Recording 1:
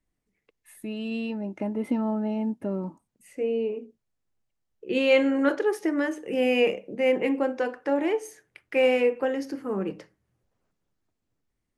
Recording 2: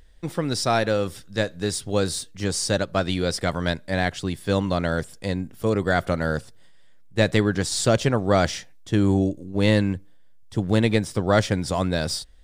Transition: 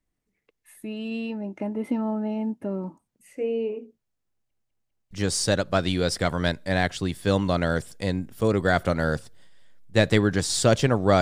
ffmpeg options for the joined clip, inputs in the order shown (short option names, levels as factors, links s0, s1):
-filter_complex "[0:a]apad=whole_dur=11.21,atrim=end=11.21,asplit=4[s0][s1][s2][s3];[s0]atrim=end=4.512[s4];[s1]atrim=start=4.308:end=4.512[s5];[s2]atrim=start=4.308:end=4.512[s6];[s3]atrim=start=4.308:end=4.512[s7];[1:a]atrim=start=2.328:end=8.43[s8];[s4][s5]acrossfade=d=0.004:c1=hsin:c2=hsin[s9];[s9][s6]acrossfade=d=0.004:c1=hsin:c2=hsin[s10];[s10][s7]acrossfade=d=0.004:c1=hsin:c2=hsin[s11];[s11][s8]acrossfade=d=0.004:c1=hsin:c2=hsin"